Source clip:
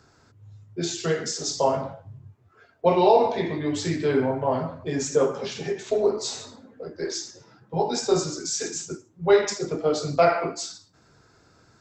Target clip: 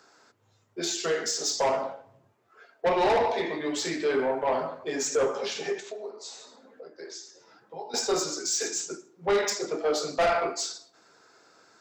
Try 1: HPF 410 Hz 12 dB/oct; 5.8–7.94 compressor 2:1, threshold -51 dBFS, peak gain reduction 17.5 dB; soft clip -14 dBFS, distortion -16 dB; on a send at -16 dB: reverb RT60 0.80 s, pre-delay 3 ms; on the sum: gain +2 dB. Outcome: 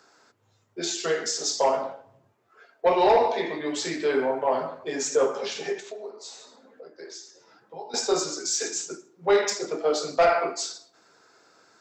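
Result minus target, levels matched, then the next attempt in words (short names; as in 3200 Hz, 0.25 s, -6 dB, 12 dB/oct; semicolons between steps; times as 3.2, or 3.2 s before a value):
soft clip: distortion -8 dB
HPF 410 Hz 12 dB/oct; 5.8–7.94 compressor 2:1, threshold -51 dBFS, peak gain reduction 17.5 dB; soft clip -21.5 dBFS, distortion -8 dB; on a send at -16 dB: reverb RT60 0.80 s, pre-delay 3 ms; on the sum: gain +2 dB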